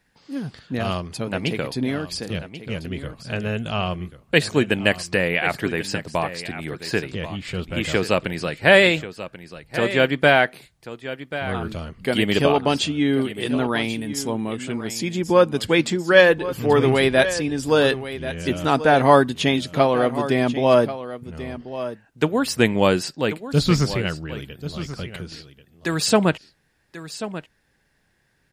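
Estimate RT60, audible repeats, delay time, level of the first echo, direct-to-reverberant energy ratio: none, 1, 1.087 s, -13.0 dB, none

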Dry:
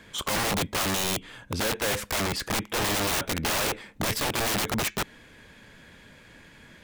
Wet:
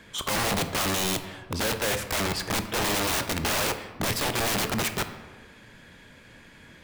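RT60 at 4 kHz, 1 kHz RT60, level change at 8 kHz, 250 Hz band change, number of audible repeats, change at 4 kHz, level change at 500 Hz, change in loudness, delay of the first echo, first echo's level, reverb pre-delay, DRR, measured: 0.80 s, 1.4 s, 0.0 dB, +0.5 dB, none, +0.5 dB, +0.5 dB, +0.5 dB, none, none, 19 ms, 9.0 dB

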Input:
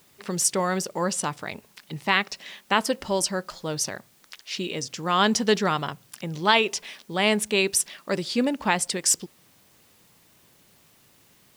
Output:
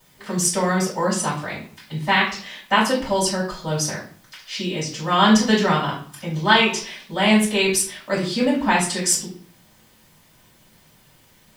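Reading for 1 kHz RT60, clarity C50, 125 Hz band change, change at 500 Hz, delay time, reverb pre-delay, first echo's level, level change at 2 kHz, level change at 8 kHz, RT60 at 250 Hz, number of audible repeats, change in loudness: 0.50 s, 6.5 dB, +7.5 dB, +3.5 dB, none, 3 ms, none, +5.0 dB, +2.5 dB, 0.60 s, none, +4.5 dB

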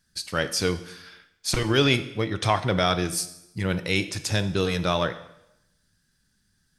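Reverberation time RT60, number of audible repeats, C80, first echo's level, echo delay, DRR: 0.85 s, none, 16.0 dB, none, none, 10.5 dB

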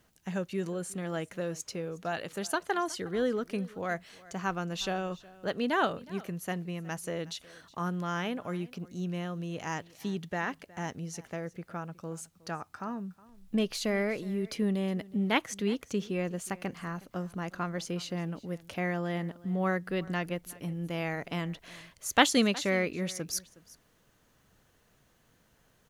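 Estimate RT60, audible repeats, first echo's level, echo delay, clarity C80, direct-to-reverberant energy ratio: none, 1, -21.0 dB, 0.365 s, none, none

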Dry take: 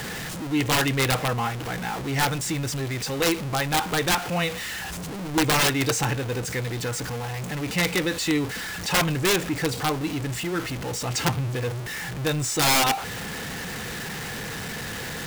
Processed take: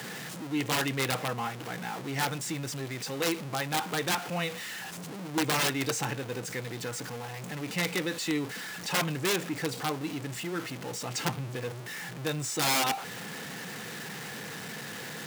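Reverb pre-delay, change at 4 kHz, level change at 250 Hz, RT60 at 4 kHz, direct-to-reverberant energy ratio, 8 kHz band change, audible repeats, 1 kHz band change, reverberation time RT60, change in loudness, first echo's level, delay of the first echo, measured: none, -6.5 dB, -6.5 dB, none, none, -6.5 dB, none, -6.5 dB, none, -7.0 dB, none, none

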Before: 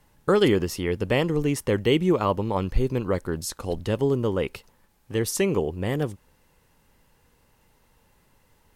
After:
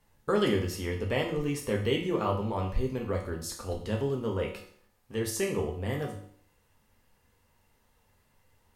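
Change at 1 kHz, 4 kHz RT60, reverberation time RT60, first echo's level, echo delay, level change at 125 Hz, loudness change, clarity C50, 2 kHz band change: -5.0 dB, 0.55 s, 0.60 s, none, none, -5.5 dB, -6.5 dB, 7.0 dB, -5.0 dB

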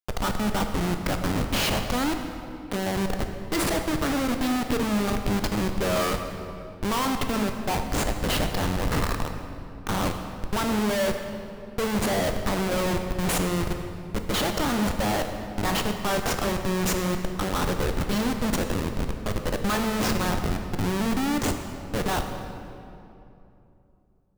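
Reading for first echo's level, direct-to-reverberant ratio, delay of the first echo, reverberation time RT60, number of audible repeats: none, 5.0 dB, none, 2.8 s, none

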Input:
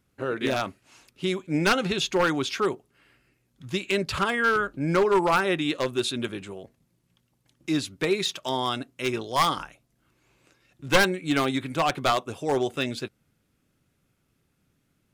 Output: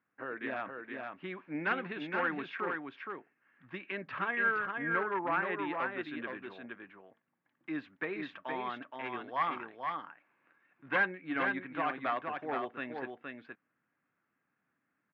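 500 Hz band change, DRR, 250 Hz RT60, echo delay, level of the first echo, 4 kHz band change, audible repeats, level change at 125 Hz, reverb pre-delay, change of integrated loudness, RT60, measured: -13.0 dB, none, none, 0.47 s, -4.5 dB, -21.0 dB, 1, -17.5 dB, none, -10.0 dB, none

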